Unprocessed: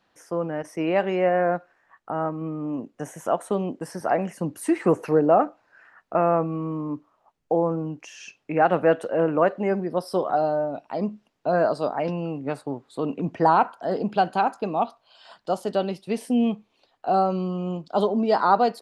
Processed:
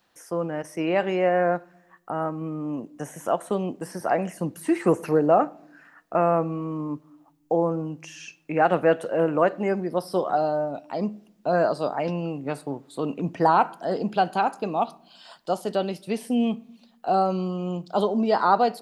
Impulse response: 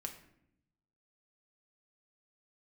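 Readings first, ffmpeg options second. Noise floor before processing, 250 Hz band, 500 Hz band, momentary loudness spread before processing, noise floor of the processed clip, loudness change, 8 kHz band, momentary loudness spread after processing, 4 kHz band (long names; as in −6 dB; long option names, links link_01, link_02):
−70 dBFS, −0.5 dB, −0.5 dB, 12 LU, −60 dBFS, −0.5 dB, can't be measured, 12 LU, +1.0 dB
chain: -filter_complex "[0:a]acrossover=split=4000[link_01][link_02];[link_02]acompressor=threshold=-51dB:ratio=4:attack=1:release=60[link_03];[link_01][link_03]amix=inputs=2:normalize=0,aemphasis=mode=production:type=50kf,asplit=2[link_04][link_05];[1:a]atrim=start_sample=2205[link_06];[link_05][link_06]afir=irnorm=-1:irlink=0,volume=-10dB[link_07];[link_04][link_07]amix=inputs=2:normalize=0,volume=-2.5dB"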